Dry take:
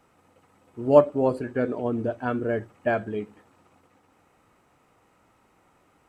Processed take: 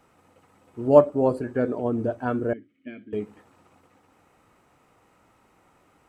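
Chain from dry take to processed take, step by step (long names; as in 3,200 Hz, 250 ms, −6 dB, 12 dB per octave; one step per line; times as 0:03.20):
0:02.53–0:03.13: formant filter i
dynamic equaliser 2,800 Hz, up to −6 dB, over −47 dBFS, Q 0.82
level +1.5 dB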